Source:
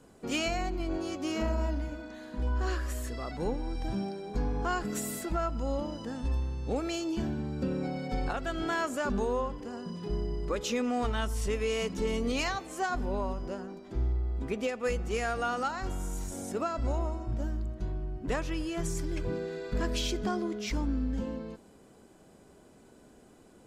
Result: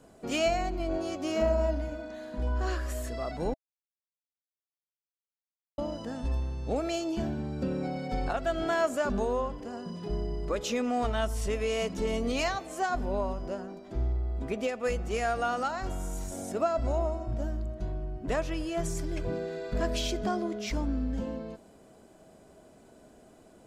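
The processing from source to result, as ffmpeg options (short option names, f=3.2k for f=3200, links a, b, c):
-filter_complex "[0:a]asplit=3[a][b][c];[a]atrim=end=3.54,asetpts=PTS-STARTPTS,afade=t=out:st=3.536:d=0.004:c=hsin[d];[b]atrim=start=3.54:end=5.78,asetpts=PTS-STARTPTS,volume=0[e];[c]atrim=start=5.78,asetpts=PTS-STARTPTS,afade=t=in:d=0.004:c=hsin[f];[d][e][f]concat=n=3:v=0:a=1,equalizer=f=650:w=6.3:g=10"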